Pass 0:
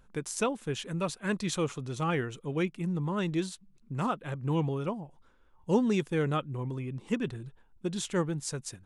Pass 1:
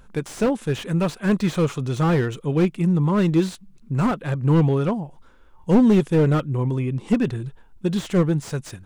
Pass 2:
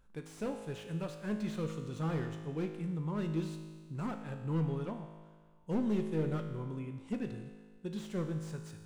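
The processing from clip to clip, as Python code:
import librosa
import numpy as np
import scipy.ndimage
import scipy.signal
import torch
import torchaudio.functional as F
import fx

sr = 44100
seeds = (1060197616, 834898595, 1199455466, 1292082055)

y1 = fx.hpss(x, sr, part='harmonic', gain_db=4)
y1 = fx.slew_limit(y1, sr, full_power_hz=31.0)
y1 = y1 * 10.0 ** (8.5 / 20.0)
y2 = fx.comb_fb(y1, sr, f0_hz=53.0, decay_s=1.6, harmonics='all', damping=0.0, mix_pct=80)
y2 = y2 * 10.0 ** (-6.0 / 20.0)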